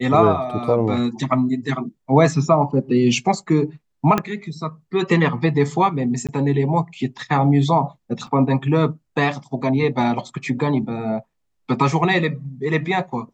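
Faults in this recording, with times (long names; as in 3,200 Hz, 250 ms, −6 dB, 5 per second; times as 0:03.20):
0:04.18: click −6 dBFS
0:06.27–0:06.29: drop-out 17 ms
0:08.27: drop-out 3.3 ms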